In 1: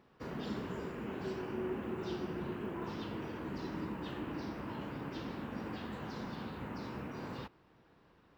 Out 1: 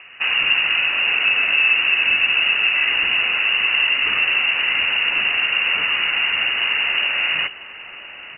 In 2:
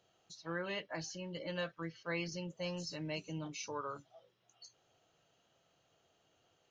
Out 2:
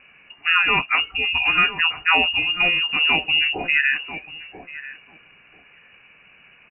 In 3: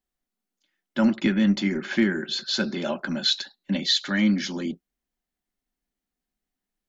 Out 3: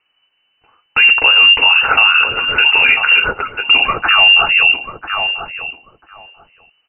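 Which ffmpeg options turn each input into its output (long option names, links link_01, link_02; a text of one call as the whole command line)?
ffmpeg -i in.wav -filter_complex "[0:a]bandreject=frequency=60:width_type=h:width=6,bandreject=frequency=120:width_type=h:width=6,bandreject=frequency=180:width_type=h:width=6,bandreject=frequency=240:width_type=h:width=6,lowpass=frequency=2600:width_type=q:width=0.5098,lowpass=frequency=2600:width_type=q:width=0.6013,lowpass=frequency=2600:width_type=q:width=0.9,lowpass=frequency=2600:width_type=q:width=2.563,afreqshift=-3000,asplit=2[link_01][link_02];[link_02]adelay=990,lowpass=frequency=990:poles=1,volume=-11dB,asplit=2[link_03][link_04];[link_04]adelay=990,lowpass=frequency=990:poles=1,volume=0.16[link_05];[link_01][link_03][link_05]amix=inputs=3:normalize=0,asplit=2[link_06][link_07];[link_07]acompressor=threshold=-41dB:ratio=6,volume=-1dB[link_08];[link_06][link_08]amix=inputs=2:normalize=0,alimiter=level_in=19.5dB:limit=-1dB:release=50:level=0:latency=1,volume=-1dB" out.wav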